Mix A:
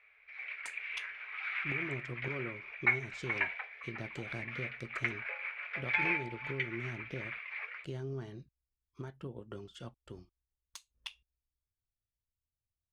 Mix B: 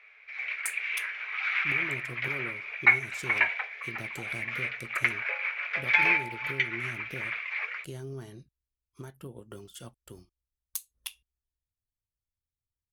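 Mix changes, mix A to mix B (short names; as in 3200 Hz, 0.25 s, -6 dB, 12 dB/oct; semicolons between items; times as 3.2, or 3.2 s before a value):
background +7.0 dB; master: remove air absorption 140 m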